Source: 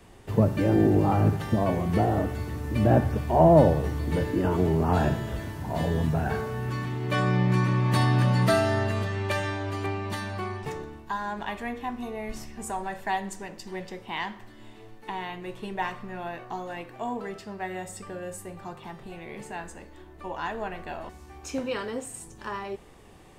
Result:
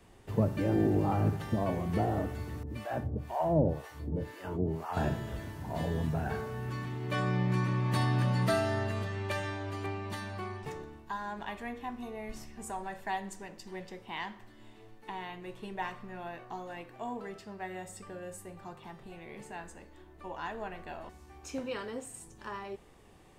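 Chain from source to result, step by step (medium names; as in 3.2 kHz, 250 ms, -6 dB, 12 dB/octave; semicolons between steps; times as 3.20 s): 2.63–4.97 s: harmonic tremolo 2 Hz, depth 100%, crossover 660 Hz; trim -6.5 dB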